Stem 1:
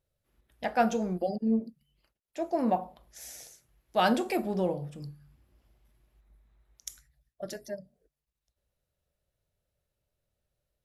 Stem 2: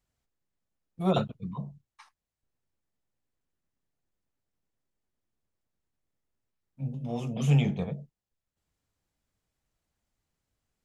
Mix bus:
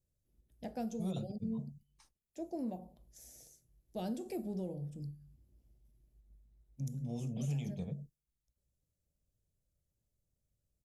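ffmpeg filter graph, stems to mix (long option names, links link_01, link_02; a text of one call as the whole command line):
ffmpeg -i stem1.wav -i stem2.wav -filter_complex "[0:a]volume=-1dB[link_01];[1:a]agate=range=-7dB:threshold=-56dB:ratio=16:detection=peak,highshelf=frequency=5000:gain=6.5,volume=1.5dB[link_02];[link_01][link_02]amix=inputs=2:normalize=0,firequalizer=gain_entry='entry(140,0);entry(1100,-21);entry(6400,-6)':delay=0.05:min_phase=1,acrossover=split=750|2400[link_03][link_04][link_05];[link_03]acompressor=threshold=-37dB:ratio=4[link_06];[link_04]acompressor=threshold=-55dB:ratio=4[link_07];[link_05]acompressor=threshold=-54dB:ratio=4[link_08];[link_06][link_07][link_08]amix=inputs=3:normalize=0" out.wav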